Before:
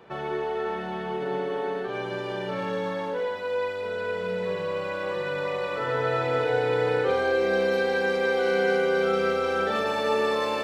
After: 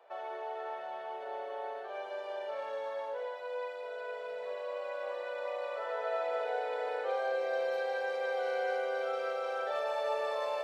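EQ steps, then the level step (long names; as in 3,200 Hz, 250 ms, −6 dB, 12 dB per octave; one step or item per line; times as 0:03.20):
four-pole ladder high-pass 570 Hz, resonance 65%
−1.5 dB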